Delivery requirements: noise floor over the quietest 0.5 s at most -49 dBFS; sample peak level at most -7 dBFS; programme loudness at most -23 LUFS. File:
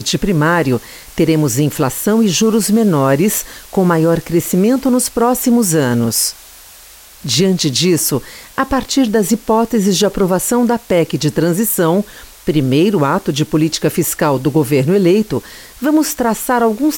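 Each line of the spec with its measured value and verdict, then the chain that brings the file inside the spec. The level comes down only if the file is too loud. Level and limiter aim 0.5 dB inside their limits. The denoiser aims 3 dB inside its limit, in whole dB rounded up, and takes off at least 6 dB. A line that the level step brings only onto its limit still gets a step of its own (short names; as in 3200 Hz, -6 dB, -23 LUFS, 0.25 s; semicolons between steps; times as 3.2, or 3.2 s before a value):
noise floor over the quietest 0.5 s -39 dBFS: fail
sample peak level -3.5 dBFS: fail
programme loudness -14.0 LUFS: fail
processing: denoiser 6 dB, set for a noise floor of -39 dBFS; gain -9.5 dB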